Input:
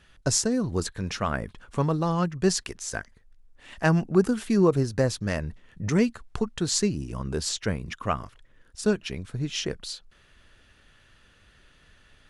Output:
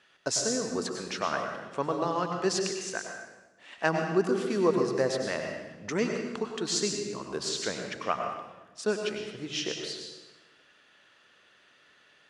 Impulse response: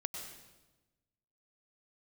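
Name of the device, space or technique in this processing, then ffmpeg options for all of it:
supermarket ceiling speaker: -filter_complex "[0:a]highpass=340,lowpass=6800[s0];[1:a]atrim=start_sample=2205[s1];[s0][s1]afir=irnorm=-1:irlink=0"

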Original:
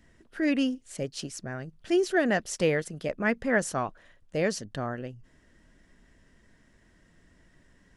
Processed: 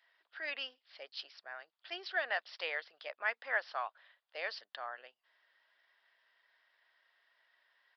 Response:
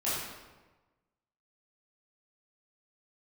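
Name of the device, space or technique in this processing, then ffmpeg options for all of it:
musical greeting card: -af "aresample=11025,aresample=44100,highpass=f=750:w=0.5412,highpass=f=750:w=1.3066,equalizer=f=3500:t=o:w=0.38:g=4.5,volume=0.562"

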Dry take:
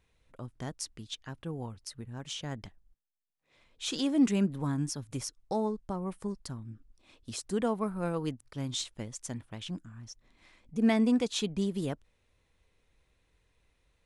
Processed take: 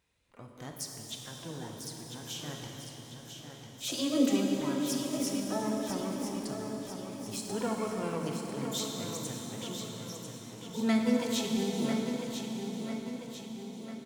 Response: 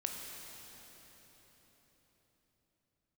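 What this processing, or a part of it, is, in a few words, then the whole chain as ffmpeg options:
shimmer-style reverb: -filter_complex "[0:a]highpass=f=87:p=1,highshelf=f=2700:g=4.5,asplit=3[s0][s1][s2];[s0]afade=t=out:st=3.88:d=0.02[s3];[s1]aecho=1:1:3.1:0.64,afade=t=in:st=3.88:d=0.02,afade=t=out:st=5.62:d=0.02[s4];[s2]afade=t=in:st=5.62:d=0.02[s5];[s3][s4][s5]amix=inputs=3:normalize=0,aecho=1:1:997|1994|2991|3988|4985|5982:0.398|0.207|0.108|0.056|0.0291|0.0151,asplit=2[s6][s7];[s7]asetrate=88200,aresample=44100,atempo=0.5,volume=0.355[s8];[s6][s8]amix=inputs=2:normalize=0[s9];[1:a]atrim=start_sample=2205[s10];[s9][s10]afir=irnorm=-1:irlink=0,volume=0.668"

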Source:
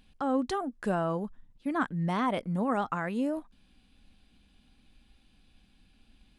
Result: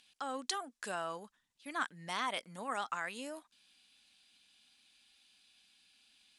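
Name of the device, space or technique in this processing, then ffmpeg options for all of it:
piezo pickup straight into a mixer: -af "lowpass=7800,aderivative,volume=3.35"

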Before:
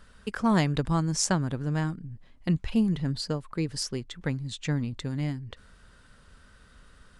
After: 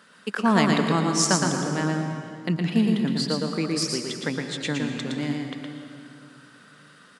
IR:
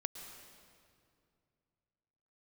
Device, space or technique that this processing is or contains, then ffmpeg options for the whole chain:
PA in a hall: -filter_complex "[0:a]highpass=f=180:w=0.5412,highpass=f=180:w=1.3066,equalizer=f=2300:t=o:w=2.3:g=3,aecho=1:1:115:0.631[s0];[1:a]atrim=start_sample=2205[s1];[s0][s1]afir=irnorm=-1:irlink=0,volume=1.78"

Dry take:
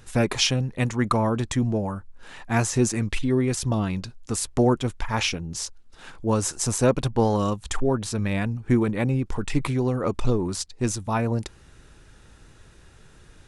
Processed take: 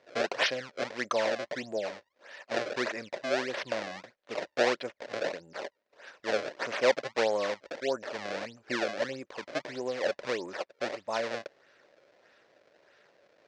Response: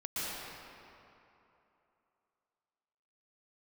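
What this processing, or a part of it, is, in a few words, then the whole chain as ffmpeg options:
circuit-bent sampling toy: -af "acrusher=samples=27:mix=1:aa=0.000001:lfo=1:lforange=43.2:lforate=1.6,highpass=540,equalizer=f=570:t=q:w=4:g=10,equalizer=f=850:t=q:w=4:g=-5,equalizer=f=1200:t=q:w=4:g=-5,equalizer=f=1800:t=q:w=4:g=4,equalizer=f=3200:t=q:w=4:g=-3,lowpass=f=5600:w=0.5412,lowpass=f=5600:w=1.3066,volume=0.631"

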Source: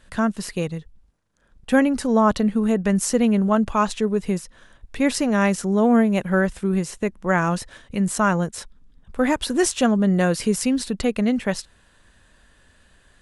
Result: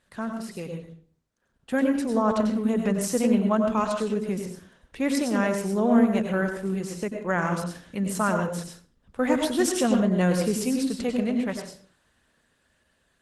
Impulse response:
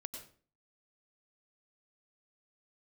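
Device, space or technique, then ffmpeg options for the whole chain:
far-field microphone of a smart speaker: -filter_complex "[1:a]atrim=start_sample=2205[s0];[0:a][s0]afir=irnorm=-1:irlink=0,highpass=f=130:p=1,dynaudnorm=f=250:g=17:m=2,volume=0.562" -ar 48000 -c:a libopus -b:a 16k

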